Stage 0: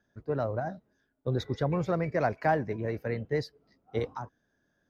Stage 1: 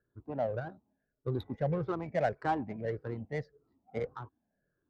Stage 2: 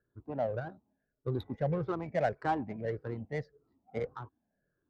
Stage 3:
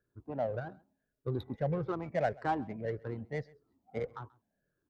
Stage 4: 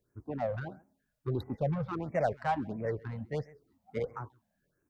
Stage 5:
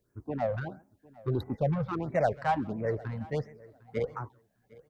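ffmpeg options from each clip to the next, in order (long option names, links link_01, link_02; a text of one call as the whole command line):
ffmpeg -i in.wav -af "afftfilt=real='re*pow(10,14/40*sin(2*PI*(0.57*log(max(b,1)*sr/1024/100)/log(2)-(-1.7)*(pts-256)/sr)))':imag='im*pow(10,14/40*sin(2*PI*(0.57*log(max(b,1)*sr/1024/100)/log(2)-(-1.7)*(pts-256)/sr)))':win_size=1024:overlap=0.75,adynamicequalizer=threshold=0.00501:dfrequency=800:dqfactor=6.5:tfrequency=800:tqfactor=6.5:attack=5:release=100:ratio=0.375:range=3:mode=boostabove:tftype=bell,adynamicsmooth=sensitivity=2.5:basefreq=1400,volume=-6.5dB" out.wav
ffmpeg -i in.wav -af anull out.wav
ffmpeg -i in.wav -af "aecho=1:1:133:0.0631,volume=-1dB" out.wav
ffmpeg -i in.wav -filter_complex "[0:a]asplit=2[link_01][link_02];[link_02]asoftclip=type=tanh:threshold=-36.5dB,volume=-4dB[link_03];[link_01][link_03]amix=inputs=2:normalize=0,afftfilt=real='re*(1-between(b*sr/1024,320*pow(4000/320,0.5+0.5*sin(2*PI*1.5*pts/sr))/1.41,320*pow(4000/320,0.5+0.5*sin(2*PI*1.5*pts/sr))*1.41))':imag='im*(1-between(b*sr/1024,320*pow(4000/320,0.5+0.5*sin(2*PI*1.5*pts/sr))/1.41,320*pow(4000/320,0.5+0.5*sin(2*PI*1.5*pts/sr))*1.41))':win_size=1024:overlap=0.75" out.wav
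ffmpeg -i in.wav -af "aecho=1:1:754|1508:0.075|0.012,volume=3dB" out.wav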